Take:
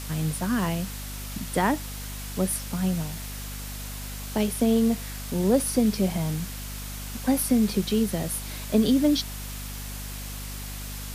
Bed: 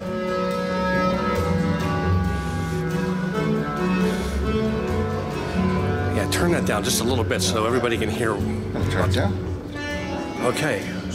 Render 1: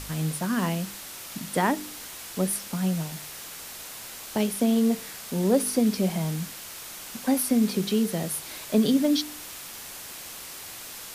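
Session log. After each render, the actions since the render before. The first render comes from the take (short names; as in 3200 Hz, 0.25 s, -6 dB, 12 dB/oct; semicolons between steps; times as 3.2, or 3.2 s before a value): de-hum 50 Hz, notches 9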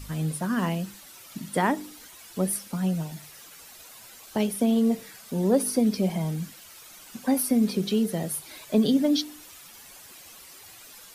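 denoiser 11 dB, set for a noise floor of -41 dBFS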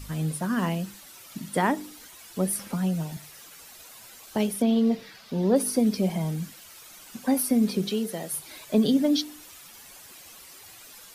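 2.59–3.17 three-band squash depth 40%; 4.62–5.56 resonant high shelf 6100 Hz -9.5 dB, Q 1.5; 7.89–8.32 HPF 270 Hz -> 570 Hz 6 dB/oct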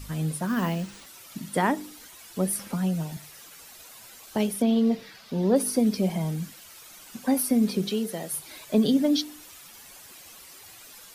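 0.47–1.06 careless resampling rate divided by 3×, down none, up hold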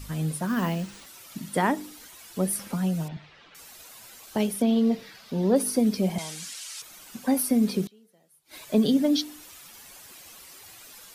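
3.08–3.55 LPF 3700 Hz 24 dB/oct; 6.18–6.82 weighting filter ITU-R 468; 7.86–8.59 flipped gate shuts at -29 dBFS, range -29 dB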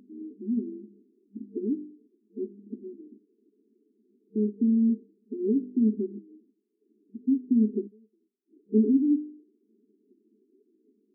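FFT band-pass 200–450 Hz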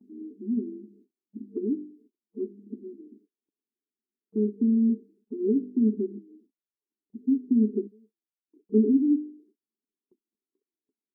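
gate -59 dBFS, range -33 dB; dynamic EQ 470 Hz, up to +3 dB, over -36 dBFS, Q 1.7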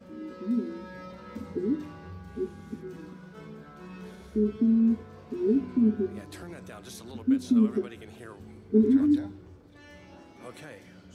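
add bed -22.5 dB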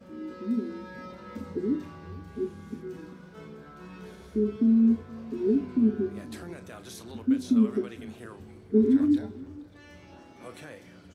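doubler 35 ms -11.5 dB; echo 0.471 s -21.5 dB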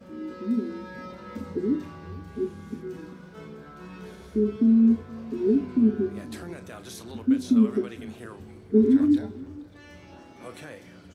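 gain +2.5 dB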